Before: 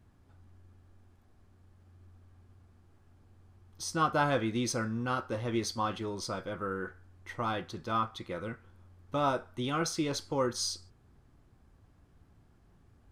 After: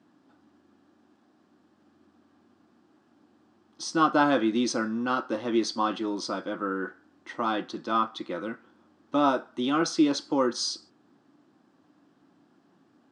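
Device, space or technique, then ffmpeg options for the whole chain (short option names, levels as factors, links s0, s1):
television speaker: -af "highpass=f=200:w=0.5412,highpass=f=200:w=1.3066,equalizer=f=300:t=q:w=4:g=8,equalizer=f=440:t=q:w=4:g=-5,equalizer=f=2200:t=q:w=4:g=-6,equalizer=f=6500:t=q:w=4:g=-4,lowpass=f=7200:w=0.5412,lowpass=f=7200:w=1.3066,volume=1.88"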